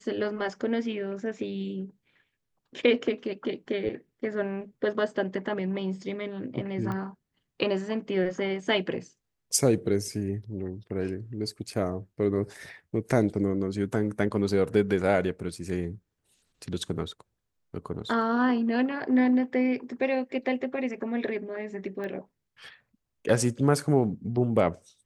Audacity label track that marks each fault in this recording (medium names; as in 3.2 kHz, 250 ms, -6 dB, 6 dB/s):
6.920000	6.920000	pop -22 dBFS
22.040000	22.040000	pop -25 dBFS